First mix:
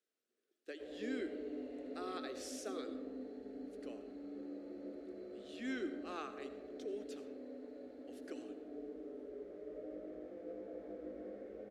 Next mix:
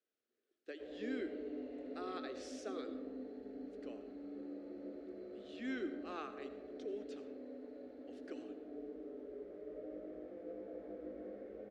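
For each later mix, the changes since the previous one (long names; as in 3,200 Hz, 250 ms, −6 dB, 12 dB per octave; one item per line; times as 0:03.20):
master: add high-frequency loss of the air 95 metres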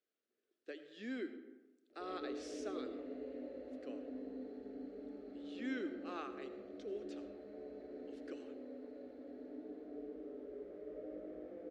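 background: entry +1.20 s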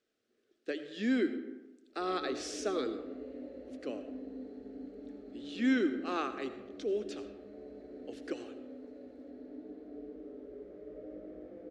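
speech +10.5 dB
master: add bass and treble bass +7 dB, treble +3 dB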